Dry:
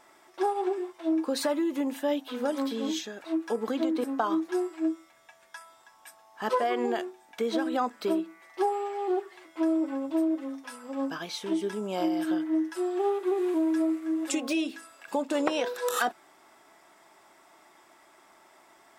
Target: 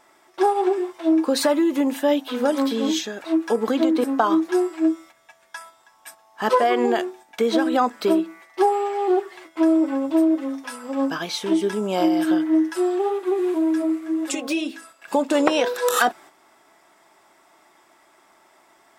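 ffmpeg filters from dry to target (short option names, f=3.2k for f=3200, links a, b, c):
-filter_complex "[0:a]agate=range=-7dB:threshold=-51dB:ratio=16:detection=peak,asplit=3[a][b][c];[a]afade=t=out:st=12.95:d=0.02[d];[b]flanger=delay=2.9:depth=3.4:regen=-46:speed=1.9:shape=triangular,afade=t=in:st=12.95:d=0.02,afade=t=out:st=15.1:d=0.02[e];[c]afade=t=in:st=15.1:d=0.02[f];[d][e][f]amix=inputs=3:normalize=0,volume=8.5dB"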